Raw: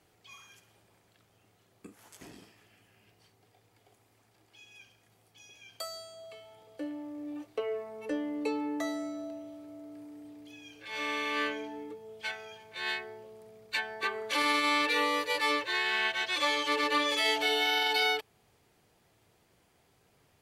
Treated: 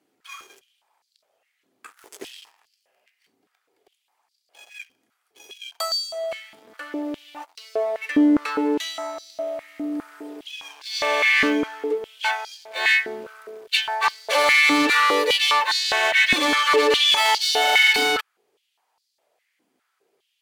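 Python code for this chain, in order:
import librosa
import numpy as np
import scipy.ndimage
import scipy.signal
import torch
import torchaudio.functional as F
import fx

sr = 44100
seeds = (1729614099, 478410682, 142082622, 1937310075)

y = fx.leveller(x, sr, passes=3)
y = fx.filter_held_highpass(y, sr, hz=4.9, low_hz=260.0, high_hz=4600.0)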